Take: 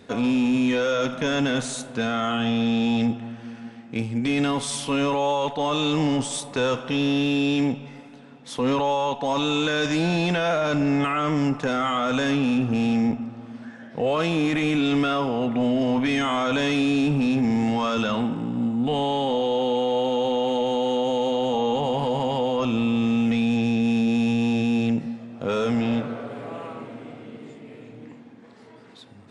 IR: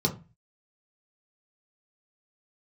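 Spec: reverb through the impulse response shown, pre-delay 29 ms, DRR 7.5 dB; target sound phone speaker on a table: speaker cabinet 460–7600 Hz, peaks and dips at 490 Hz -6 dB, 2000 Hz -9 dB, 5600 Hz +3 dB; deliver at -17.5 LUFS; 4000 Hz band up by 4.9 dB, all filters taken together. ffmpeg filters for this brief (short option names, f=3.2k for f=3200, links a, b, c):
-filter_complex "[0:a]equalizer=f=4k:t=o:g=6.5,asplit=2[a][b];[1:a]atrim=start_sample=2205,adelay=29[c];[b][c]afir=irnorm=-1:irlink=0,volume=-16.5dB[d];[a][d]amix=inputs=2:normalize=0,highpass=f=460:w=0.5412,highpass=f=460:w=1.3066,equalizer=f=490:t=q:w=4:g=-6,equalizer=f=2k:t=q:w=4:g=-9,equalizer=f=5.6k:t=q:w=4:g=3,lowpass=f=7.6k:w=0.5412,lowpass=f=7.6k:w=1.3066,volume=8.5dB"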